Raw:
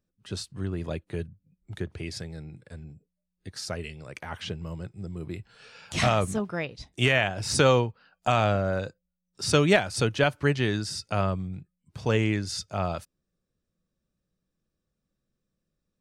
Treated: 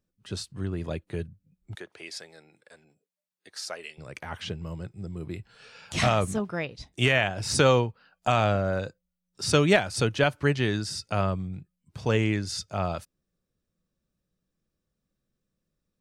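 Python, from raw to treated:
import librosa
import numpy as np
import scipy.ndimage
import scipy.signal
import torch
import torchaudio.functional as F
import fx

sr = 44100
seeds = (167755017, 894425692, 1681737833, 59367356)

y = fx.highpass(x, sr, hz=560.0, slope=12, at=(1.75, 3.98))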